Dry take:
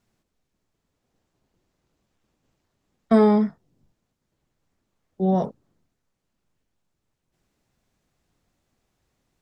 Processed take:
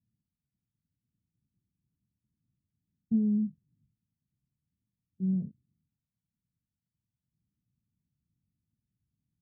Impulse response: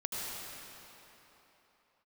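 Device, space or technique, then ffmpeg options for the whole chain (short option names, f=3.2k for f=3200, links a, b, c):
the neighbour's flat through the wall: -af "highpass=73,lowpass=f=220:w=0.5412,lowpass=f=220:w=1.3066,equalizer=f=120:t=o:w=0.77:g=3.5,volume=-6dB"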